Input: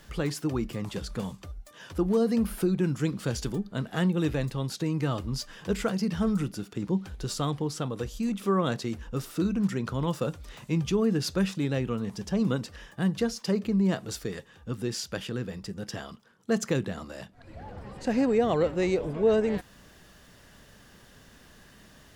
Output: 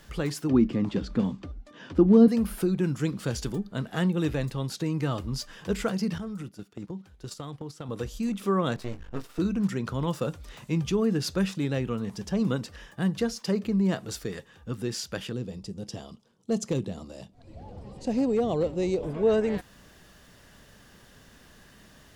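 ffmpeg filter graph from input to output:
-filter_complex "[0:a]asettb=1/sr,asplit=3[s0][s1][s2];[s0]atrim=end=0.494[s3];[s1]atrim=start=0.49:end=2.28,asetpts=PTS-STARTPTS,afade=t=in:d=0.004:c=qsin,afade=t=out:st=1.786:d=0.004:c=qsin,lowpass=4300,equalizer=f=260:t=o:w=0.97:g=13.5[s4];[s2]atrim=start=2.276[s5];[s3][s4]acrossfade=d=0.004:c1=hsin:c2=qsin[s6];[s6][s5]acrossfade=d=0.004:c1=qsin:c2=hsin,asettb=1/sr,asplit=3[s7][s8][s9];[s7]atrim=end=6.184[s10];[s8]atrim=start=6.18:end=7.89,asetpts=PTS-STARTPTS,afade=t=in:d=0.004:c=qsin,afade=t=out:st=1.706:d=0.004:c=qsin,highpass=44,agate=range=0.224:threshold=0.02:ratio=16:release=100:detection=peak,acompressor=threshold=0.0224:ratio=6:attack=3.2:release=140:knee=1:detection=peak[s11];[s9]atrim=start=7.886[s12];[s10][s11]acrossfade=d=0.004:c1=hsin:c2=qsin[s13];[s13][s12]acrossfade=d=0.004:c1=qsin:c2=hsin,asettb=1/sr,asplit=3[s14][s15][s16];[s14]atrim=end=8.764[s17];[s15]atrim=start=8.76:end=9.39,asetpts=PTS-STARTPTS,afade=t=in:d=0.004:c=qsin,afade=t=out:st=0.626:d=0.004:c=qsin,highshelf=f=5000:g=-11,aeval=exprs='max(val(0),0)':c=same,asplit=2[s18][s19];[s19]adelay=19,volume=0.422[s20];[s18][s20]amix=inputs=2:normalize=0,atrim=end_sample=27783[s21];[s16]atrim=start=9.386[s22];[s17][s21]acrossfade=d=0.004:c1=hsin:c2=qsin[s23];[s23][s22]acrossfade=d=0.004:c1=qsin:c2=hsin,asettb=1/sr,asplit=3[s24][s25][s26];[s24]atrim=end=15.334[s27];[s25]atrim=start=15.33:end=19.03,asetpts=PTS-STARTPTS,afade=t=in:d=0.004:c=qsin,afade=t=out:st=3.696:d=0.004:c=qsin,lowpass=10000,equalizer=f=1600:w=1.2:g=-14.5,volume=8.91,asoftclip=hard,volume=0.112[s28];[s26]atrim=start=19.026[s29];[s27][s28]acrossfade=d=0.004:c1=hsin:c2=qsin[s30];[s30][s29]acrossfade=d=0.004:c1=qsin:c2=hsin"

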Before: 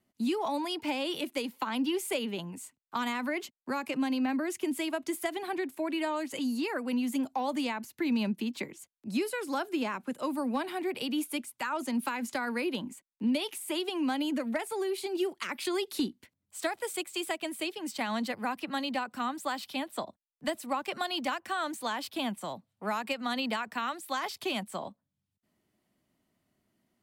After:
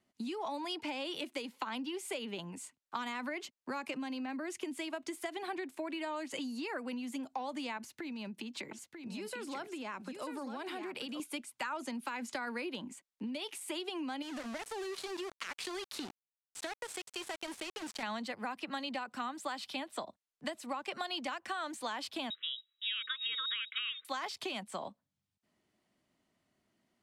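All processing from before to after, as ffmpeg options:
-filter_complex "[0:a]asettb=1/sr,asplit=3[s0][s1][s2];[s0]atrim=end=7.774[s3];[s1]atrim=start=7.77:end=11.2,asetpts=PTS-STARTPTS,afade=t=in:d=0.004:c=qsin,afade=t=out:st=3.426:d=0.004:c=qsin,acompressor=threshold=0.0141:ratio=5:attack=3.2:release=140:knee=1:detection=peak,aecho=1:1:942:0.422,atrim=end_sample=151263[s4];[s2]atrim=start=11.196[s5];[s3][s4]acrossfade=d=0.004:c1=hsin:c2=qsin[s6];[s6][s5]acrossfade=d=0.004:c1=qsin:c2=hsin,asettb=1/sr,asplit=3[s7][s8][s9];[s7]atrim=end=14.224[s10];[s8]atrim=start=14.22:end=18.03,asetpts=PTS-STARTPTS,afade=t=in:d=0.004:c=qsin,afade=t=out:st=3.806:d=0.004:c=qsin,acompressor=threshold=0.0178:ratio=4:attack=3.2:release=140:knee=1:detection=peak,aeval=exprs='val(0)*gte(abs(val(0)),0.0112)':c=same[s11];[s9]atrim=start=18.026[s12];[s10][s11]acrossfade=d=0.004:c1=hsin:c2=qsin[s13];[s13][s12]acrossfade=d=0.004:c1=qsin:c2=hsin,asettb=1/sr,asplit=3[s14][s15][s16];[s14]atrim=end=22.304[s17];[s15]atrim=start=22.3:end=24.05,asetpts=PTS-STARTPTS,afade=t=in:d=0.004:c=qsin,afade=t=out:st=1.746:d=0.004:c=qsin,lowpass=f=3400:t=q:w=0.5098,lowpass=f=3400:t=q:w=0.6013,lowpass=f=3400:t=q:w=0.9,lowpass=f=3400:t=q:w=2.563,afreqshift=-4000,asuperstop=centerf=750:order=20:qfactor=1.3,lowshelf=f=290:g=-12[s18];[s16]atrim=start=24.046[s19];[s17][s18]acrossfade=d=0.004:c1=hsin:c2=qsin[s20];[s20][s19]acrossfade=d=0.004:c1=qsin:c2=hsin,acompressor=threshold=0.0178:ratio=6,lowpass=8300,lowshelf=f=330:g=-6,volume=1.12"

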